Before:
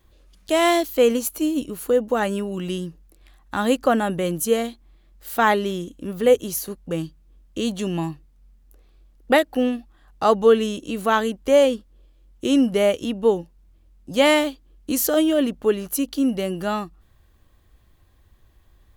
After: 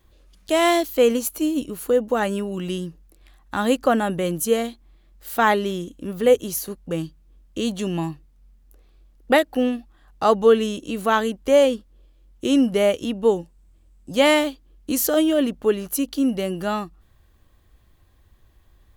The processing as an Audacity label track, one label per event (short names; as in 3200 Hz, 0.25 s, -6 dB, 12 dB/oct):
13.240000	14.120000	bell 8000 Hz +9.5 dB 0.36 oct